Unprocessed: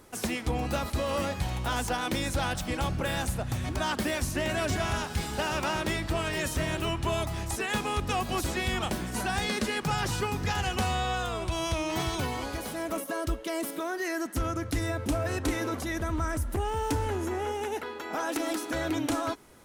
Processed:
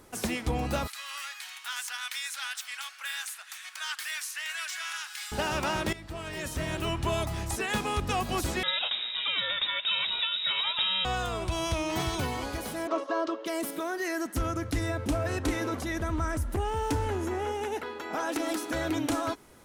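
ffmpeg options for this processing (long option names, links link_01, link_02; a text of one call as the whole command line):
ffmpeg -i in.wav -filter_complex "[0:a]asettb=1/sr,asplit=3[link_01][link_02][link_03];[link_01]atrim=end=0.874[link_04];[link_02]atrim=start=0.87:end=5.32,asetpts=PTS-STARTPTS,afade=type=in:duration=0.004:curve=qsin,afade=type=out:start_time=4.446:duration=0.004:curve=qsin,highpass=frequency=1400:width=0.5412,highpass=frequency=1400:width=1.3066[link_05];[link_03]atrim=start=5.316[link_06];[link_04][link_05]acrossfade=duration=0.004:curve1=hsin:curve2=qsin[link_07];[link_07][link_06]acrossfade=duration=0.004:curve1=qsin:curve2=hsin,asettb=1/sr,asplit=3[link_08][link_09][link_10];[link_08]atrim=end=8.634[link_11];[link_09]atrim=start=8.63:end=11.05,asetpts=PTS-STARTPTS,afade=type=in:duration=0.004:curve=qsin,afade=type=out:start_time=2.416:duration=0.004:curve=qsin,lowpass=frequency=3300:width_type=q:width=0.5098,lowpass=frequency=3300:width_type=q:width=0.6013,lowpass=frequency=3300:width_type=q:width=0.9,lowpass=frequency=3300:width_type=q:width=2.563,afreqshift=-3900[link_12];[link_10]atrim=start=11.046[link_13];[link_11][link_12]acrossfade=duration=0.004:curve1=hsin:curve2=qsin[link_14];[link_14][link_13]acrossfade=duration=0.004:curve1=qsin:curve2=hsin,asettb=1/sr,asplit=3[link_15][link_16][link_17];[link_15]atrim=end=12.874[link_18];[link_16]atrim=start=12.87:end=13.46,asetpts=PTS-STARTPTS,afade=type=in:duration=0.004:curve=qsin,afade=type=out:start_time=0.586:duration=0.004:curve=qsin,highpass=frequency=310:width=0.5412,highpass=frequency=310:width=1.3066,equalizer=frequency=330:width_type=q:width=4:gain=5,equalizer=frequency=610:width_type=q:width=4:gain=5,equalizer=frequency=1100:width_type=q:width=4:gain=10,equalizer=frequency=2200:width_type=q:width=4:gain=-4,lowpass=frequency=5300:width=0.5412,lowpass=frequency=5300:width=1.3066[link_19];[link_17]atrim=start=13.456[link_20];[link_18][link_19]acrossfade=duration=0.004:curve1=hsin:curve2=qsin[link_21];[link_21][link_20]acrossfade=duration=0.004:curve1=qsin:curve2=hsin,asettb=1/sr,asplit=3[link_22][link_23][link_24];[link_22]atrim=end=14.704[link_25];[link_23]atrim=start=14.7:end=18.49,asetpts=PTS-STARTPTS,afade=type=in:duration=0.004:curve=qsin,afade=type=out:start_time=3.786:duration=0.004:curve=qsin,highshelf=frequency=9500:gain=-5[link_26];[link_24]atrim=start=18.486[link_27];[link_25][link_26]acrossfade=duration=0.004:curve1=hsin:curve2=qsin[link_28];[link_28][link_27]acrossfade=duration=0.004:curve1=qsin:curve2=hsin,asplit=2[link_29][link_30];[link_29]atrim=end=5.93,asetpts=PTS-STARTPTS,afade=type=out:start_time=5.926:duration=0.004:curve=hsin:silence=0.16788[link_31];[link_30]atrim=start=5.93,asetpts=PTS-STARTPTS,afade=type=in:duration=1.05:silence=0.16788[link_32];[link_31][link_32]concat=n=2:v=0:a=1" out.wav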